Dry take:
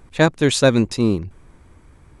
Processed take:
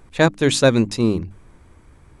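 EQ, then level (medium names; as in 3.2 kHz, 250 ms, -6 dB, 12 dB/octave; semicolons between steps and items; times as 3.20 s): hum notches 50/100/150/200/250/300 Hz; 0.0 dB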